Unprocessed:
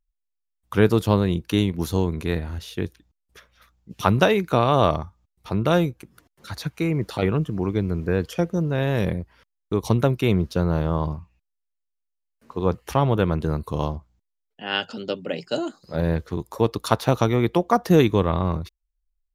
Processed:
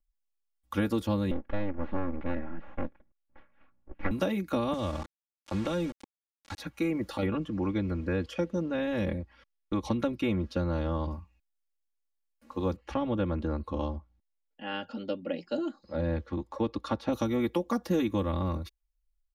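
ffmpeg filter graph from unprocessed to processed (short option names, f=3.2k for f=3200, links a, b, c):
-filter_complex "[0:a]asettb=1/sr,asplit=3[a][b][c];[a]atrim=end=1.314[d];[b]atrim=start=1.31:end=4.11,asetpts=PTS-STARTPTS,afade=t=in:d=0.004:c=qsin,afade=t=out:st=2.796:d=0.004:c=qsin,aeval=exprs='abs(val(0))':c=same,lowpass=f=2.1k:w=0.5412,lowpass=f=2.1k:w=1.3066[e];[c]atrim=start=4.106[f];[d][e]acrossfade=d=0.004:c1=hsin:c2=qsin[g];[g][f]acrossfade=d=0.004:c1=qsin:c2=hsin,asettb=1/sr,asplit=3[h][i][j];[h]atrim=end=4.734[k];[i]atrim=start=4.73:end=6.6,asetpts=PTS-STARTPTS,afade=t=in:d=0.004:c=qsin,afade=t=out:st=1.866:d=0.004:c=qsin,acrossover=split=160|3000[l][m][n];[m]acompressor=threshold=-23dB:ratio=2.5:attack=3.2:release=140:knee=2.83:detection=peak[o];[l][o][n]amix=inputs=3:normalize=0,aeval=exprs='val(0)*gte(abs(val(0)),0.0266)':c=same,lowpass=7.3k[p];[j]atrim=start=6.596[q];[k][p]acrossfade=d=0.004:c1=hsin:c2=qsin[r];[r][q]acrossfade=d=0.004:c1=qsin:c2=hsin,asettb=1/sr,asplit=3[s][t][u];[s]atrim=end=7.264[v];[t]atrim=start=7.26:end=11.11,asetpts=PTS-STARTPTS,afade=t=in:d=0.004:c=qsin,afade=t=out:st=3.846:d=0.004:c=qsin,lowpass=2.9k,aemphasis=mode=production:type=75kf[w];[u]atrim=start=11.106[x];[v][w]acrossfade=d=0.004:c1=hsin:c2=qsin[y];[y][x]acrossfade=d=0.004:c1=qsin:c2=hsin,asettb=1/sr,asplit=3[z][aa][ab];[z]atrim=end=12.764[ac];[aa]atrim=start=12.76:end=17.13,asetpts=PTS-STARTPTS,afade=t=in:d=0.004:c=qsin,afade=t=out:st=4.366:d=0.004:c=qsin,lowpass=5.1k,highshelf=f=3.7k:g=-9[ad];[ab]atrim=start=17.126[ae];[ac][ad]acrossfade=d=0.004:c1=hsin:c2=qsin[af];[af][ae]acrossfade=d=0.004:c1=qsin:c2=hsin,aecho=1:1:3.6:1,acrossover=split=420|2700|7000[ag][ah][ai][aj];[ag]acompressor=threshold=-20dB:ratio=4[ak];[ah]acompressor=threshold=-28dB:ratio=4[al];[ai]acompressor=threshold=-42dB:ratio=4[am];[aj]acompressor=threshold=-50dB:ratio=4[an];[ak][al][am][an]amix=inputs=4:normalize=0,volume=-6.5dB"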